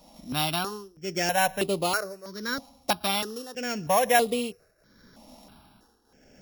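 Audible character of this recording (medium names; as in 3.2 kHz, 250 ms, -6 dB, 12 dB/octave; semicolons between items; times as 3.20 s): a buzz of ramps at a fixed pitch in blocks of 8 samples; tremolo triangle 0.79 Hz, depth 90%; notches that jump at a steady rate 3.1 Hz 420–5700 Hz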